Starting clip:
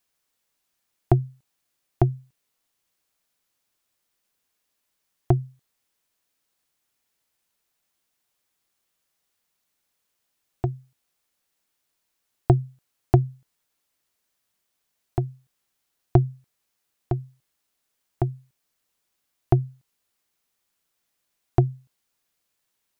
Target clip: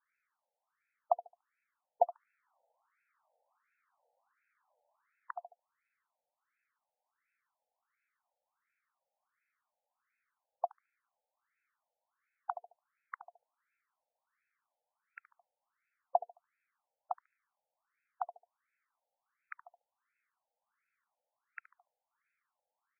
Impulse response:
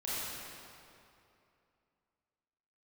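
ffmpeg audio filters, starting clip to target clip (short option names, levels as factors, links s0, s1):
-filter_complex "[0:a]asettb=1/sr,asplit=3[s0][s1][s2];[s0]atrim=end=2.024[s3];[s1]atrim=start=2.02:end=5.44,asetpts=PTS-STARTPTS,afade=t=in:d=0.004:c=qsin,afade=t=out:st=3.416:d=0.004:c=qsin,equalizer=f=570:w=0.47:g=12.5[s4];[s2]atrim=start=5.436[s5];[s3][s4]acrossfade=d=0.004:c1=hsin:c2=qsin[s6];[s6][s5]acrossfade=d=0.004:c1=qsin:c2=hsin,alimiter=limit=0.422:level=0:latency=1:release=54,lowshelf=f=320:g=-5,aecho=1:1:72|144|216:0.141|0.0396|0.0111,afftfilt=real='re*between(b*sr/1024,630*pow(1900/630,0.5+0.5*sin(2*PI*1.4*pts/sr))/1.41,630*pow(1900/630,0.5+0.5*sin(2*PI*1.4*pts/sr))*1.41)':imag='im*between(b*sr/1024,630*pow(1900/630,0.5+0.5*sin(2*PI*1.4*pts/sr))/1.41,630*pow(1900/630,0.5+0.5*sin(2*PI*1.4*pts/sr))*1.41)':win_size=1024:overlap=0.75,volume=1.5"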